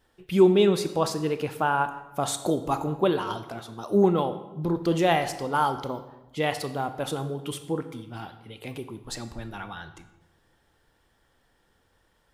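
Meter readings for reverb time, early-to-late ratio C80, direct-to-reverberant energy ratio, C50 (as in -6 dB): 1.1 s, 13.5 dB, 10.0 dB, 12.0 dB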